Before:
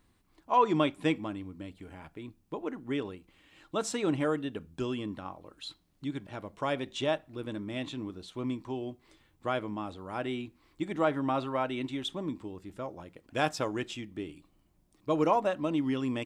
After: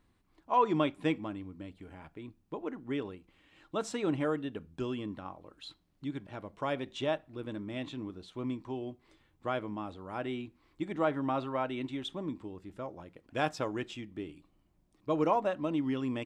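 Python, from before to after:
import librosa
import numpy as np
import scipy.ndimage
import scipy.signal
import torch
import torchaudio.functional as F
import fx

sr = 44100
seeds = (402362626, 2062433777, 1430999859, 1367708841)

y = fx.high_shelf(x, sr, hz=5200.0, db=-8.0)
y = y * librosa.db_to_amplitude(-2.0)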